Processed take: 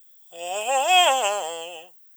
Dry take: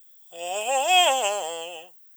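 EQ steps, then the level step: dynamic bell 1.3 kHz, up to +6 dB, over -36 dBFS, Q 1.3; 0.0 dB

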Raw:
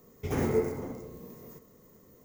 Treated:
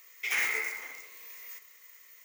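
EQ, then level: resonant high-pass 2.2 kHz, resonance Q 3.5; +8.5 dB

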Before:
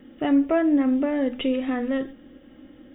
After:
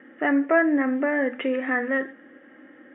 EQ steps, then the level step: high-pass 320 Hz 12 dB/octave; resonant low-pass 1.8 kHz, resonance Q 4.4; distance through air 140 m; +1.5 dB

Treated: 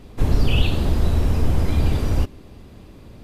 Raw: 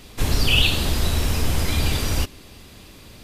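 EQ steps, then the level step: tilt shelf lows +8.5 dB, about 1.5 kHz; -5.0 dB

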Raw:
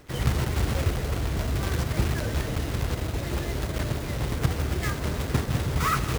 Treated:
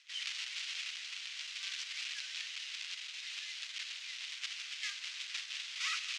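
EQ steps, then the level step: ladder high-pass 2.2 kHz, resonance 40%; low-pass 6.2 kHz 24 dB/octave; treble shelf 4.5 kHz +6 dB; +2.5 dB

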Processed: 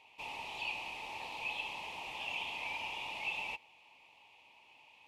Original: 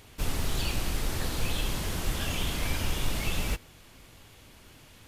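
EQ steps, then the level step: two resonant band-passes 1.5 kHz, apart 1.5 oct; +3.5 dB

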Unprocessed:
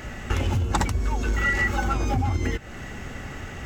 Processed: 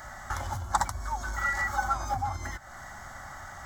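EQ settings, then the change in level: resonant low shelf 390 Hz -11.5 dB, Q 1.5; static phaser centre 1.1 kHz, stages 4; 0.0 dB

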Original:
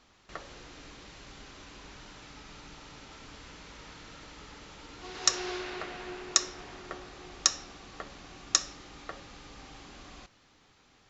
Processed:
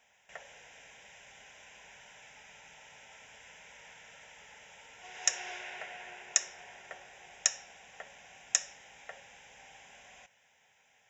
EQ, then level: high-pass 610 Hz 6 dB/octave; treble shelf 4.5 kHz +6 dB; static phaser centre 1.2 kHz, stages 6; 0.0 dB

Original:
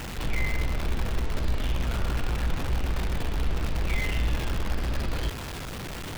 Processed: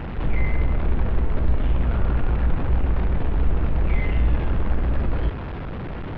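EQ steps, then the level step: distance through air 340 m; tape spacing loss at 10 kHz 25 dB; +7.0 dB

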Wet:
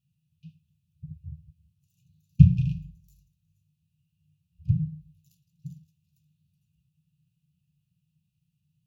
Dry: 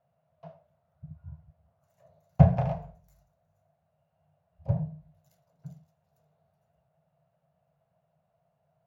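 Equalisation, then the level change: brick-wall FIR band-stop 210–2400 Hz; +4.0 dB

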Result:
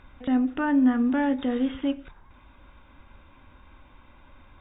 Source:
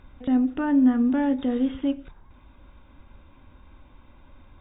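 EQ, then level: peaking EQ 1.8 kHz +7 dB 2.7 oct; -2.5 dB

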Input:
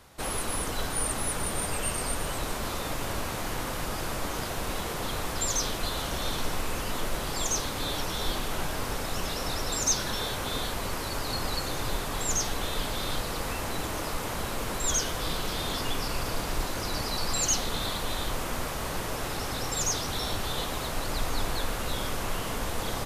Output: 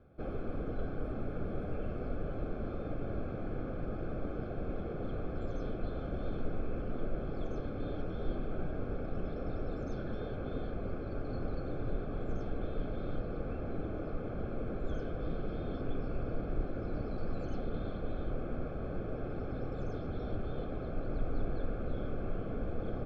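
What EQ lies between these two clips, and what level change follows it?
boxcar filter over 46 samples; distance through air 280 m; bass shelf 280 Hz -6 dB; +3.0 dB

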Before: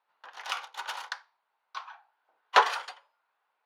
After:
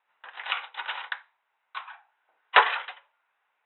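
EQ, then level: Chebyshev low-pass 3.9 kHz, order 10; peaking EQ 2.2 kHz +8.5 dB 1.2 oct; 0.0 dB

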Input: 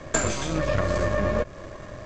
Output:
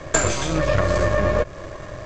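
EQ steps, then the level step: peaking EQ 230 Hz -8.5 dB 0.34 oct; +5.0 dB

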